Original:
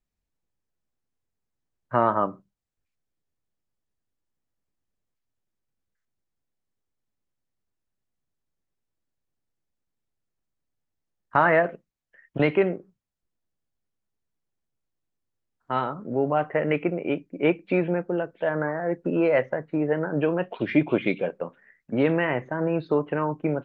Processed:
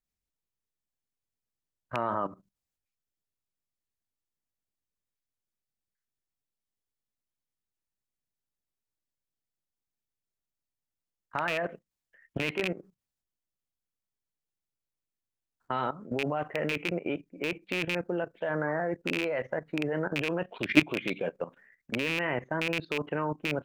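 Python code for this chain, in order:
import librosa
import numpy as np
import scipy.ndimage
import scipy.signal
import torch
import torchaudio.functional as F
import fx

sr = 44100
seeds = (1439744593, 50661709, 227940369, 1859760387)

y = fx.rattle_buzz(x, sr, strikes_db=-26.0, level_db=-10.0)
y = fx.high_shelf(y, sr, hz=2600.0, db=6.5)
y = fx.level_steps(y, sr, step_db=15)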